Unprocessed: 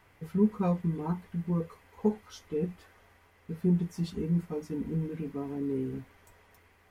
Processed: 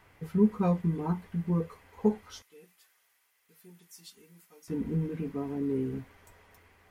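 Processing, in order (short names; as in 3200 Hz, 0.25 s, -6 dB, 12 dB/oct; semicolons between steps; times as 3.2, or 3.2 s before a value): 2.42–4.68 differentiator; gain +1.5 dB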